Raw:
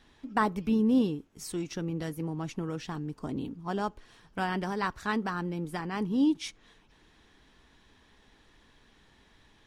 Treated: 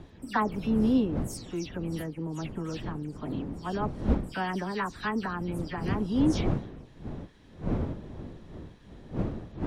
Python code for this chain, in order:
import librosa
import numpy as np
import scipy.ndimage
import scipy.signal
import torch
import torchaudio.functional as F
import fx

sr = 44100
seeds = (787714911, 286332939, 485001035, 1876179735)

y = fx.spec_delay(x, sr, highs='early', ms=145)
y = fx.dmg_wind(y, sr, seeds[0], corner_hz=250.0, level_db=-35.0)